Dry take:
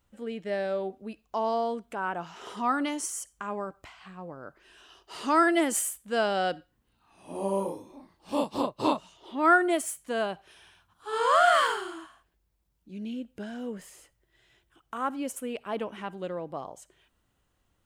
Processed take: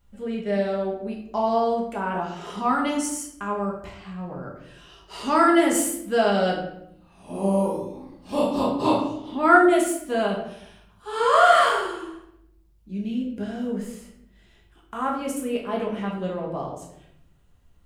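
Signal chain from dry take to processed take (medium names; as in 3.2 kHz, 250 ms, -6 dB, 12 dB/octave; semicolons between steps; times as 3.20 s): bass shelf 170 Hz +9 dB; simulated room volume 180 m³, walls mixed, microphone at 1.3 m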